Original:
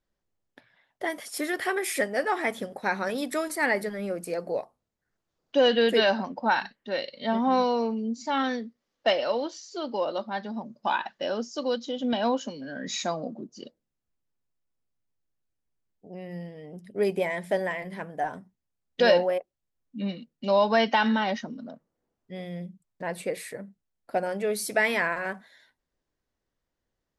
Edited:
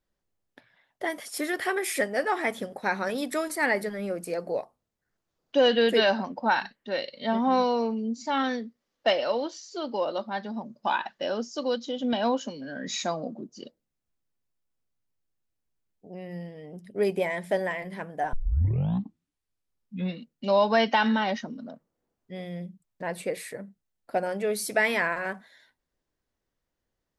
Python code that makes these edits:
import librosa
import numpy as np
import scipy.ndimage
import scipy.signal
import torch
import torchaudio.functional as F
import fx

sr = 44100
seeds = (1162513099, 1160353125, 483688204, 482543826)

y = fx.edit(x, sr, fx.tape_start(start_s=18.33, length_s=1.87), tone=tone)